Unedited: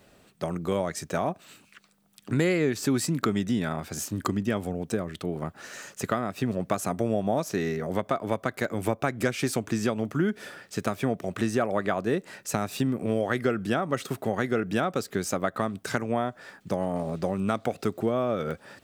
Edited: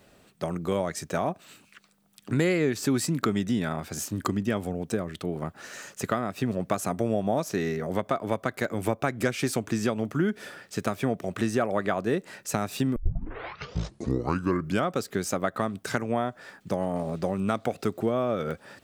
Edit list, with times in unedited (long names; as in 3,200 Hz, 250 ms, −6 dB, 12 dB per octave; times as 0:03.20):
0:12.96: tape start 1.97 s